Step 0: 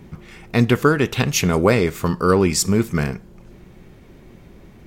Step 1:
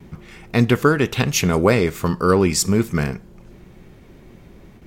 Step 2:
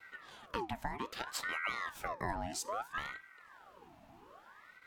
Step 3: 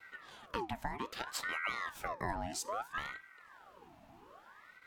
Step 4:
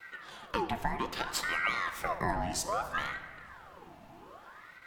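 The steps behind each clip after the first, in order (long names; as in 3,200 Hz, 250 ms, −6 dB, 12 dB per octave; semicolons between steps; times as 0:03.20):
noise gate with hold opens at −37 dBFS
downward compressor 6 to 1, threshold −24 dBFS, peak gain reduction 14 dB; Chebyshev high-pass with heavy ripple 160 Hz, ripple 3 dB; ring modulator whose carrier an LFO sweeps 1,100 Hz, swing 60%, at 0.62 Hz; level −6.5 dB
no processing that can be heard
convolution reverb RT60 1.8 s, pre-delay 6 ms, DRR 7.5 dB; level +5.5 dB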